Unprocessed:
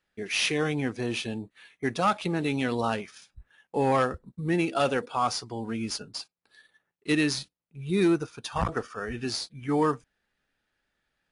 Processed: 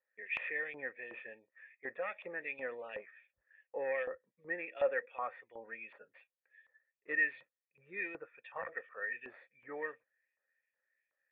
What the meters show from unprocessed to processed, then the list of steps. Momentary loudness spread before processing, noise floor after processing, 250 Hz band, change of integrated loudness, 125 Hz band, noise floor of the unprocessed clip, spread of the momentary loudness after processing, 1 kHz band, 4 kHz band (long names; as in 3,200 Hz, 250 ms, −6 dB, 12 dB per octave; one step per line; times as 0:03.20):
12 LU, below −85 dBFS, −27.5 dB, −11.0 dB, below −35 dB, −81 dBFS, 18 LU, −17.0 dB, below −25 dB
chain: formant resonators in series e
auto-filter band-pass saw up 2.7 Hz 1,000–3,200 Hz
level +11.5 dB